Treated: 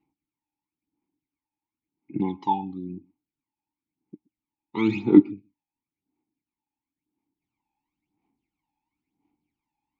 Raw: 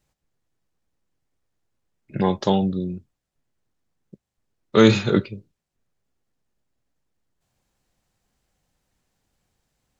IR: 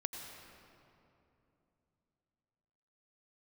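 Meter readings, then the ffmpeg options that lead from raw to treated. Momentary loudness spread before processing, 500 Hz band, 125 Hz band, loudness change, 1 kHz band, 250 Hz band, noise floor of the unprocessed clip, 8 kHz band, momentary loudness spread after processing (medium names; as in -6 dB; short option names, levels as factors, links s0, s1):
21 LU, -8.5 dB, -10.5 dB, -2.0 dB, -1.0 dB, -0.5 dB, -83 dBFS, no reading, 19 LU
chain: -filter_complex "[0:a]aphaser=in_gain=1:out_gain=1:delay=1.2:decay=0.73:speed=0.97:type=sinusoidal,asplit=3[s0][s1][s2];[s0]bandpass=f=300:t=q:w=8,volume=1[s3];[s1]bandpass=f=870:t=q:w=8,volume=0.501[s4];[s2]bandpass=f=2240:t=q:w=8,volume=0.355[s5];[s3][s4][s5]amix=inputs=3:normalize=0,asplit=2[s6][s7];[1:a]atrim=start_sample=2205,atrim=end_sample=3969,asetrate=29988,aresample=44100[s8];[s7][s8]afir=irnorm=-1:irlink=0,volume=0.376[s9];[s6][s9]amix=inputs=2:normalize=0"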